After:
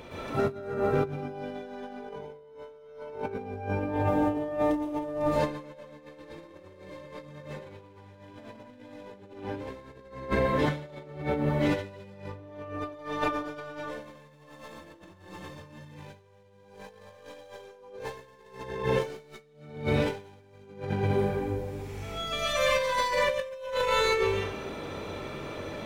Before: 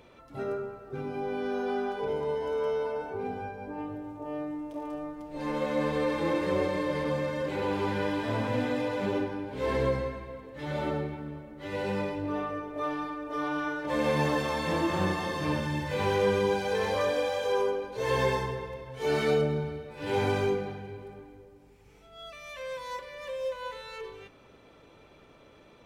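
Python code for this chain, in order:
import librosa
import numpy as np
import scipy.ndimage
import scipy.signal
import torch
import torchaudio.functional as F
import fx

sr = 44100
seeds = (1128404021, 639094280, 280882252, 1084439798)

y = fx.tracing_dist(x, sr, depth_ms=0.086)
y = fx.rev_plate(y, sr, seeds[0], rt60_s=0.7, hf_ratio=0.9, predelay_ms=105, drr_db=-7.5)
y = fx.over_compress(y, sr, threshold_db=-33.0, ratio=-0.5)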